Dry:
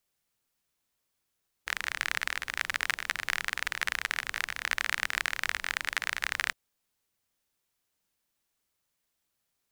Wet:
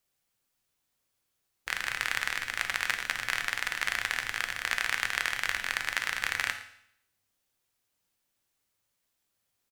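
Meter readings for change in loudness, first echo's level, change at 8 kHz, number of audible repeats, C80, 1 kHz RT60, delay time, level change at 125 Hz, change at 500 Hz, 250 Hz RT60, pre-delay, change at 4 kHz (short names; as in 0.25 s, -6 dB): +1.0 dB, -19.0 dB, +1.0 dB, 1, 13.0 dB, 0.70 s, 0.113 s, +2.5 dB, +1.0 dB, 0.80 s, 4 ms, +1.0 dB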